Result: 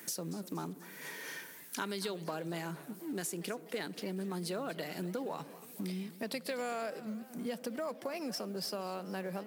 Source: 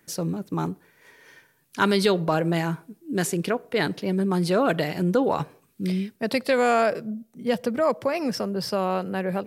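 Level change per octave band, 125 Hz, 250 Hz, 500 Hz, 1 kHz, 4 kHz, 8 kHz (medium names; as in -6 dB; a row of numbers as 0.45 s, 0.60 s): -16.0 dB, -14.0 dB, -15.5 dB, -16.0 dB, -10.5 dB, -6.0 dB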